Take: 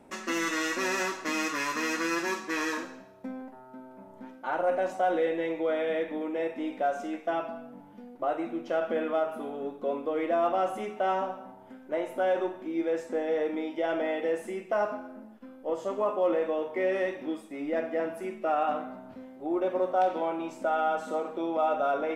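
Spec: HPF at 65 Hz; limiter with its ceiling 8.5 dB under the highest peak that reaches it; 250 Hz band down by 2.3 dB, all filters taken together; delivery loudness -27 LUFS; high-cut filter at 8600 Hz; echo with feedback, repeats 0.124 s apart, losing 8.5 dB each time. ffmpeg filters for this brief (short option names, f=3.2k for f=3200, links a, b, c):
-af "highpass=65,lowpass=8.6k,equalizer=f=250:t=o:g=-3.5,alimiter=limit=-24dB:level=0:latency=1,aecho=1:1:124|248|372|496:0.376|0.143|0.0543|0.0206,volume=6dB"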